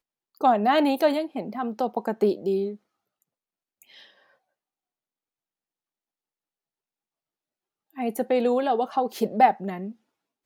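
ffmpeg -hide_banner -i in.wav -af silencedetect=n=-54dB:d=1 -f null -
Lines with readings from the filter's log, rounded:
silence_start: 4.33
silence_end: 7.90 | silence_duration: 3.57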